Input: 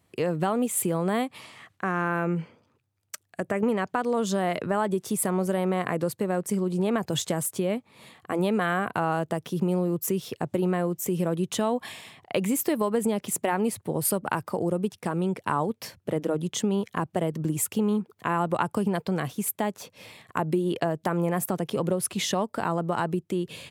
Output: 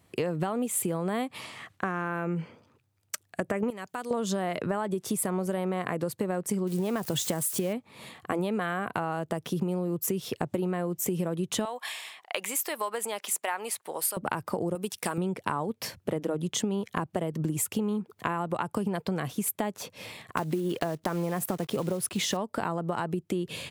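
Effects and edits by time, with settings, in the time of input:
0:03.70–0:04.11: first-order pre-emphasis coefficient 0.8
0:06.67–0:07.73: spike at every zero crossing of −30 dBFS
0:11.65–0:14.17: high-pass filter 870 Hz
0:14.75–0:15.18: spectral tilt +3 dB per octave
0:20.37–0:22.39: one scale factor per block 5 bits
whole clip: downward compressor 6 to 1, threshold −30 dBFS; level +4 dB

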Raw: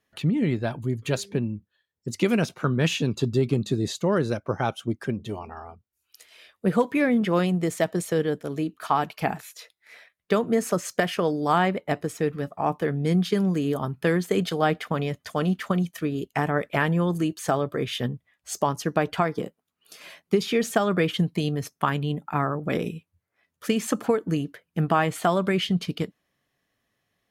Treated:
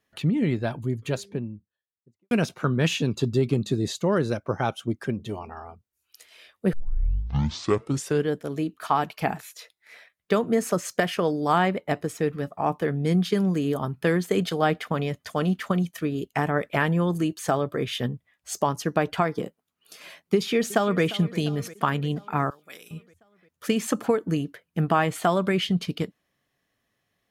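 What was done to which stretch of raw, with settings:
0:00.67–0:02.31: fade out and dull
0:06.73: tape start 1.56 s
0:20.35–0:21.03: delay throw 350 ms, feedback 65%, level −17 dB
0:22.50–0:22.91: first difference

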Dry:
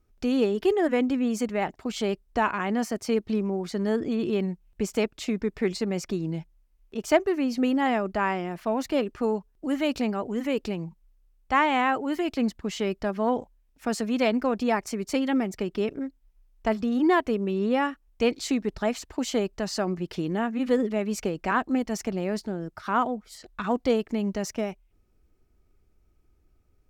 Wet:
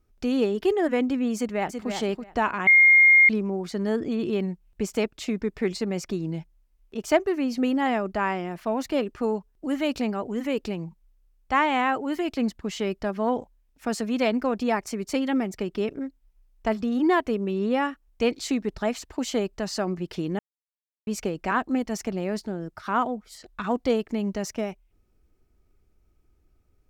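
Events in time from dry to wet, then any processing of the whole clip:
0:01.36–0:01.90: delay throw 330 ms, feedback 15%, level −6.5 dB
0:02.67–0:03.29: beep over 2,130 Hz −11.5 dBFS
0:20.39–0:21.07: silence

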